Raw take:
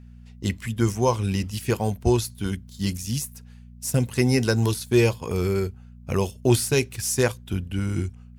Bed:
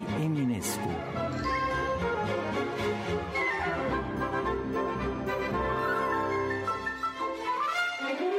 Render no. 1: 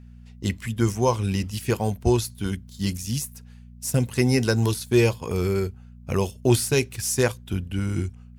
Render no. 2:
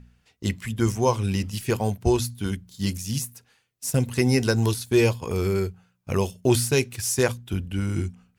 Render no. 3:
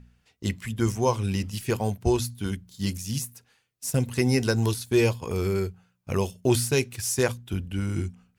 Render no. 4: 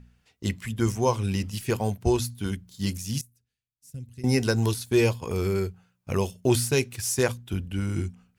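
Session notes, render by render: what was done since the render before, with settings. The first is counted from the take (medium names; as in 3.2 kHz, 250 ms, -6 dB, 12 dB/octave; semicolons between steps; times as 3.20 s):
no audible change
de-hum 60 Hz, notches 4
trim -2 dB
3.21–4.24 s: amplifier tone stack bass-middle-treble 10-0-1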